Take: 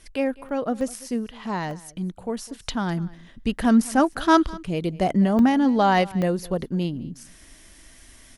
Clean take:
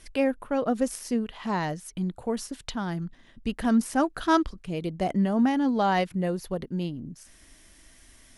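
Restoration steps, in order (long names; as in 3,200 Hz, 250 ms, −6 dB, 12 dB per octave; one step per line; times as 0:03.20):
repair the gap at 0:00.49/0:00.81/0:01.71/0:04.13/0:05.39/0:06.22, 1.7 ms
echo removal 204 ms −21.5 dB
level correction −5 dB, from 0:02.62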